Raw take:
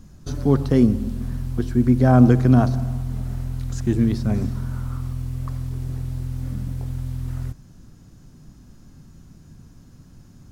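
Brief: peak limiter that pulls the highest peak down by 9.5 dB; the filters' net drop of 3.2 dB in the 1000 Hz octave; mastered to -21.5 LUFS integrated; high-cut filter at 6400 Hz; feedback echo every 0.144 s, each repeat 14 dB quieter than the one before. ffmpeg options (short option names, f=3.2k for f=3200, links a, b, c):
-af "lowpass=6.4k,equalizer=f=1k:t=o:g=-5,alimiter=limit=-12dB:level=0:latency=1,aecho=1:1:144|288:0.2|0.0399,volume=4dB"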